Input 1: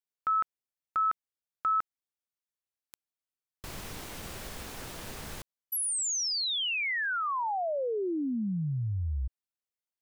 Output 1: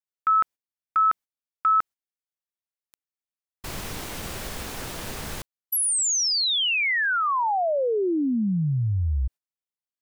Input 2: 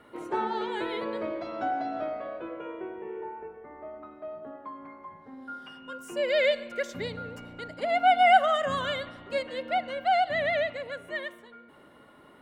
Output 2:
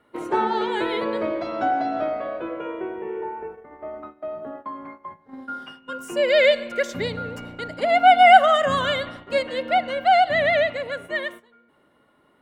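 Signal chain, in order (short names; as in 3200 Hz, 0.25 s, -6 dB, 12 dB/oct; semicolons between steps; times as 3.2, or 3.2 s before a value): gate -45 dBFS, range -14 dB; gain +7.5 dB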